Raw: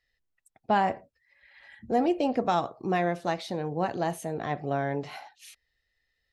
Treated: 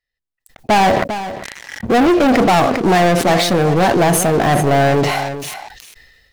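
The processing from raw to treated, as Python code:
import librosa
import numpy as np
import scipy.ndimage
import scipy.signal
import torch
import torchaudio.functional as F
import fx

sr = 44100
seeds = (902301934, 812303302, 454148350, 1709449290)

y = fx.dynamic_eq(x, sr, hz=3900.0, q=1.2, threshold_db=-50.0, ratio=4.0, max_db=-4)
y = fx.leveller(y, sr, passes=5)
y = y + 10.0 ** (-13.0 / 20.0) * np.pad(y, (int(400 * sr / 1000.0), 0))[:len(y)]
y = fx.sustainer(y, sr, db_per_s=37.0)
y = y * librosa.db_to_amplitude(4.0)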